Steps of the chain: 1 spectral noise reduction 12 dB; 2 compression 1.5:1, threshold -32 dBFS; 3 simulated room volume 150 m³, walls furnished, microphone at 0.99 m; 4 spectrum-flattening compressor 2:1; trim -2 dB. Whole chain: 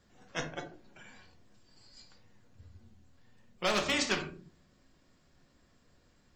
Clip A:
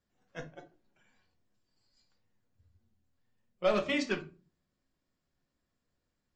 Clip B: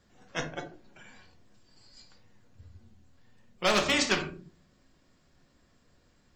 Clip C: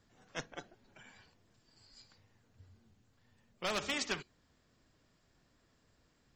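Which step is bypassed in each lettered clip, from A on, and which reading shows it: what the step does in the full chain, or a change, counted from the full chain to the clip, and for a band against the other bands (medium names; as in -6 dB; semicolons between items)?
4, 8 kHz band -9.5 dB; 2, loudness change +4.5 LU; 3, momentary loudness spread change +3 LU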